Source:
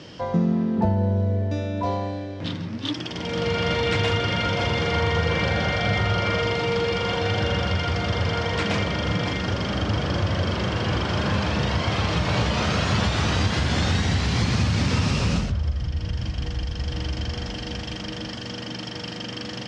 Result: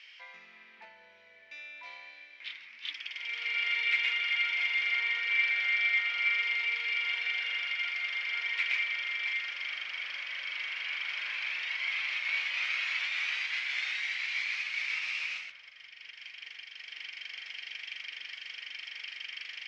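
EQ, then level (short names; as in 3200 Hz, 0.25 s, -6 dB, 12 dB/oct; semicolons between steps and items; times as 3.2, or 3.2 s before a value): ladder band-pass 2400 Hz, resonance 75%; +3.0 dB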